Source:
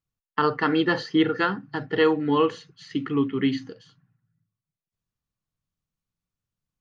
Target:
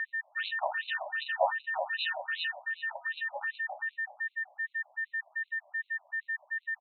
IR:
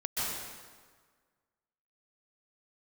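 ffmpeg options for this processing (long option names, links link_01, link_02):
-filter_complex "[0:a]highpass=frequency=460:width=0.5412,highpass=frequency=460:width=1.3066,equalizer=frequency=920:width=0.45:gain=8.5,acrusher=samples=40:mix=1:aa=0.000001,asplit=2[link_01][link_02];[link_02]adelay=13,volume=-11.5dB[link_03];[link_01][link_03]amix=inputs=2:normalize=0,aeval=exprs='val(0)*sin(2*PI*130*n/s)':channel_layout=same,acompressor=mode=upward:threshold=-25dB:ratio=2.5,asplit=2[link_04][link_05];[link_05]adelay=379,lowpass=frequency=2000:poles=1,volume=-10dB,asplit=2[link_06][link_07];[link_07]adelay=379,lowpass=frequency=2000:poles=1,volume=0.39,asplit=2[link_08][link_09];[link_09]adelay=379,lowpass=frequency=2000:poles=1,volume=0.39,asplit=2[link_10][link_11];[link_11]adelay=379,lowpass=frequency=2000:poles=1,volume=0.39[link_12];[link_04][link_06][link_08][link_10][link_12]amix=inputs=5:normalize=0,acontrast=65,equalizer=frequency=2000:width=1.6:gain=-15,aeval=exprs='val(0)+0.0501*sin(2*PI*1800*n/s)':channel_layout=same,afftfilt=real='re*between(b*sr/1024,780*pow(3100/780,0.5+0.5*sin(2*PI*2.6*pts/sr))/1.41,780*pow(3100/780,0.5+0.5*sin(2*PI*2.6*pts/sr))*1.41)':imag='im*between(b*sr/1024,780*pow(3100/780,0.5+0.5*sin(2*PI*2.6*pts/sr))/1.41,780*pow(3100/780,0.5+0.5*sin(2*PI*2.6*pts/sr))*1.41)':win_size=1024:overlap=0.75,volume=-3dB"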